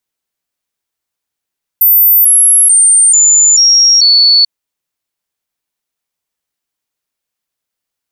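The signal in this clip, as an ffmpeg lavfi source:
-f lavfi -i "aevalsrc='0.668*clip(min(mod(t,0.44),0.44-mod(t,0.44))/0.005,0,1)*sin(2*PI*14100*pow(2,-floor(t/0.44)/3)*mod(t,0.44))':d=2.64:s=44100"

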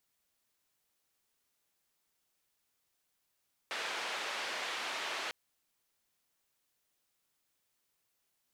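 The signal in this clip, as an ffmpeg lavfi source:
-f lavfi -i "anoisesrc=c=white:d=1.6:r=44100:seed=1,highpass=f=500,lowpass=f=3000,volume=-24.6dB"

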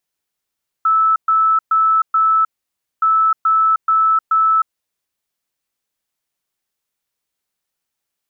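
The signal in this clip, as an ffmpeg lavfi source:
-f lavfi -i "aevalsrc='0.299*sin(2*PI*1310*t)*clip(min(mod(mod(t,2.17),0.43),0.31-mod(mod(t,2.17),0.43))/0.005,0,1)*lt(mod(t,2.17),1.72)':d=4.34:s=44100"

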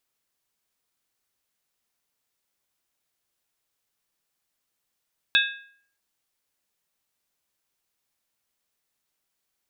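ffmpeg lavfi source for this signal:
-f lavfi -i "aevalsrc='0.126*pow(10,-3*t/0.57)*sin(2*PI*1630*t)+0.119*pow(10,-3*t/0.451)*sin(2*PI*2598.2*t)+0.112*pow(10,-3*t/0.39)*sin(2*PI*3481.7*t)+0.106*pow(10,-3*t/0.376)*sin(2*PI*3742.5*t)':d=0.63:s=44100"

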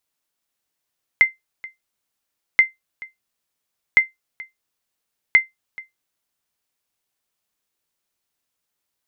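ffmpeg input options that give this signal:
-f lavfi -i "aevalsrc='0.668*(sin(2*PI*2080*mod(t,1.38))*exp(-6.91*mod(t,1.38)/0.16)+0.0794*sin(2*PI*2080*max(mod(t,1.38)-0.43,0))*exp(-6.91*max(mod(t,1.38)-0.43,0)/0.16))':d=5.52:s=44100"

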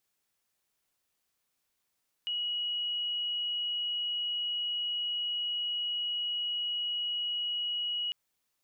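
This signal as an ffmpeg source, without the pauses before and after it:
-f lavfi -i "sine=f=2910:d=5.85:r=44100,volume=-11.94dB"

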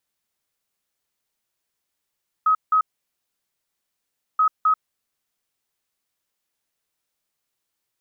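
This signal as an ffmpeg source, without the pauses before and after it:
-f lavfi -i "aevalsrc='0.2*sin(2*PI*1270*t)*clip(min(mod(mod(t,1.93),0.26),0.09-mod(mod(t,1.93),0.26))/0.005,0,1)*lt(mod(t,1.93),0.52)':d=3.86:s=44100"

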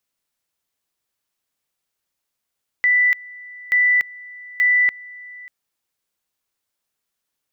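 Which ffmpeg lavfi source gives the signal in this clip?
-f lavfi -i "aevalsrc='pow(10,(-12.5-22.5*gte(mod(t,0.88),0.29))/20)*sin(2*PI*1980*t)':d=2.64:s=44100"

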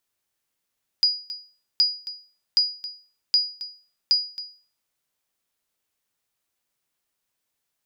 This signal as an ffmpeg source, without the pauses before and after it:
-f lavfi -i "aevalsrc='0.266*(sin(2*PI*4900*mod(t,0.77))*exp(-6.91*mod(t,0.77)/0.4)+0.168*sin(2*PI*4900*max(mod(t,0.77)-0.27,0))*exp(-6.91*max(mod(t,0.77)-0.27,0)/0.4))':d=3.85:s=44100"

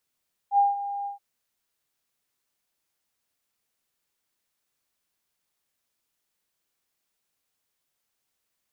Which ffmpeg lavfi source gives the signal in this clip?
-f lavfi -i "aevalsrc='0.178*sin(2*PI*805*t)':d=0.675:s=44100,afade=t=in:d=0.071,afade=t=out:st=0.071:d=0.171:silence=0.211,afade=t=out:st=0.55:d=0.125"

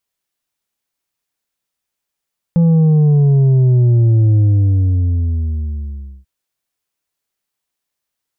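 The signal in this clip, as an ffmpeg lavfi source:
-f lavfi -i "aevalsrc='0.376*clip((3.69-t)/1.88,0,1)*tanh(1.78*sin(2*PI*170*3.69/log(65/170)*(exp(log(65/170)*t/3.69)-1)))/tanh(1.78)':d=3.69:s=44100"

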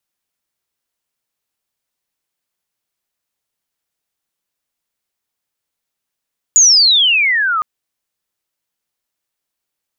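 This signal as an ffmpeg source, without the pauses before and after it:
-f lavfi -i "aevalsrc='pow(10,(-4.5-9*t/1.06)/20)*sin(2*PI*7000*1.06/log(1200/7000)*(exp(log(1200/7000)*t/1.06)-1))':d=1.06:s=44100"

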